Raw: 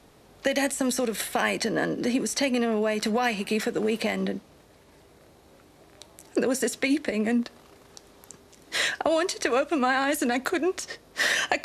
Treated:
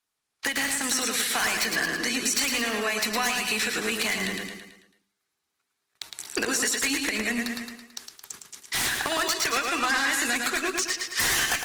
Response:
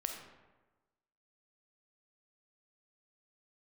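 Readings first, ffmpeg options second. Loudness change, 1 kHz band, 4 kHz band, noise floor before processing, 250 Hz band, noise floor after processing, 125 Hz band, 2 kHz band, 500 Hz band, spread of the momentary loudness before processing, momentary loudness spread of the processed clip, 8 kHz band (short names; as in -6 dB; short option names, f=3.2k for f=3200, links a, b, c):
+1.0 dB, -1.0 dB, +5.0 dB, -56 dBFS, -6.5 dB, -81 dBFS, -4.5 dB, +3.5 dB, -7.5 dB, 6 LU, 15 LU, +7.5 dB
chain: -filter_complex "[0:a]highpass=f=72:p=1,aeval=exprs='0.376*(cos(1*acos(clip(val(0)/0.376,-1,1)))-cos(1*PI/2))+0.00237*(cos(2*acos(clip(val(0)/0.376,-1,1)))-cos(2*PI/2))+0.0668*(cos(3*acos(clip(val(0)/0.376,-1,1)))-cos(3*PI/2))':c=same,acrossover=split=7800[a][b];[b]acompressor=threshold=-51dB:ratio=4:attack=1:release=60[c];[a][c]amix=inputs=2:normalize=0,acrossover=split=540|1300[d][e][f];[f]aeval=exprs='0.133*sin(PI/2*5.62*val(0)/0.133)':c=same[g];[d][e][g]amix=inputs=3:normalize=0,agate=range=-33dB:threshold=-44dB:ratio=16:detection=peak,equalizer=f=560:w=5.9:g=-10.5,bandreject=f=50:t=h:w=6,bandreject=f=100:t=h:w=6,bandreject=f=150:t=h:w=6,bandreject=f=200:t=h:w=6,bandreject=f=250:t=h:w=6,bandreject=f=300:t=h:w=6,bandreject=f=350:t=h:w=6,asplit=2[h][i];[i]aecho=0:1:110|220|330|440|550|660:0.562|0.259|0.119|0.0547|0.0252|0.0116[j];[h][j]amix=inputs=2:normalize=0,acompressor=threshold=-30dB:ratio=2,equalizer=f=2.7k:w=0.95:g=-3.5,volume=4dB" -ar 48000 -c:a libopus -b:a 20k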